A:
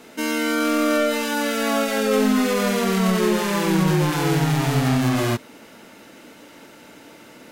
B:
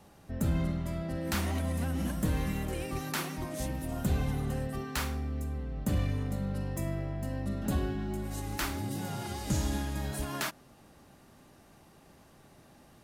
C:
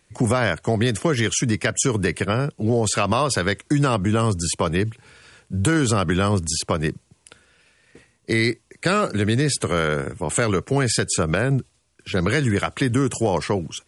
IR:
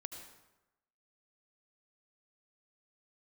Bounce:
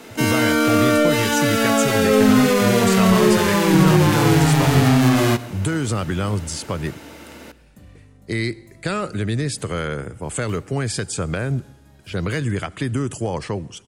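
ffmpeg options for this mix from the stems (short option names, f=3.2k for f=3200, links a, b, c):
-filter_complex "[0:a]acrossover=split=450[a][b];[b]acompressor=threshold=-21dB:ratio=6[c];[a][c]amix=inputs=2:normalize=0,volume=2.5dB,asplit=2[d][e];[e]volume=-7dB[f];[1:a]adelay=1900,volume=-16.5dB[g];[2:a]lowshelf=f=99:g=9,volume=-6dB,asplit=2[h][i];[i]volume=-13.5dB[j];[3:a]atrim=start_sample=2205[k];[f][j]amix=inputs=2:normalize=0[l];[l][k]afir=irnorm=-1:irlink=0[m];[d][g][h][m]amix=inputs=4:normalize=0"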